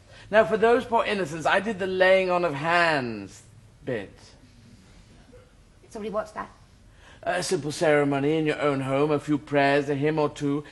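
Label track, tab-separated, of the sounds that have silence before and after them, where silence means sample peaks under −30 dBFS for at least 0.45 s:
3.880000	4.040000	sound
5.950000	6.440000	sound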